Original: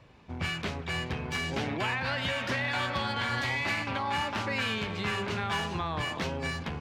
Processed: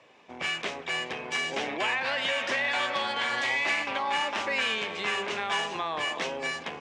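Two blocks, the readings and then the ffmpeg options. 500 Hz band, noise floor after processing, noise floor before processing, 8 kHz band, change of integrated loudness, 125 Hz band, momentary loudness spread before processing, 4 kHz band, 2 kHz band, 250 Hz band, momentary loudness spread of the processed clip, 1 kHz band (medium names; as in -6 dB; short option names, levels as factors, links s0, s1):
+2.5 dB, -45 dBFS, -42 dBFS, +4.0 dB, +2.5 dB, -16.0 dB, 4 LU, +4.0 dB, +3.5 dB, -6.0 dB, 5 LU, +2.0 dB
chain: -af "highpass=450,equalizer=f=920:t=q:w=4:g=-3,equalizer=f=1400:t=q:w=4:g=-6,equalizer=f=4400:t=q:w=4:g=-6,lowpass=f=8900:w=0.5412,lowpass=f=8900:w=1.3066,volume=1.78"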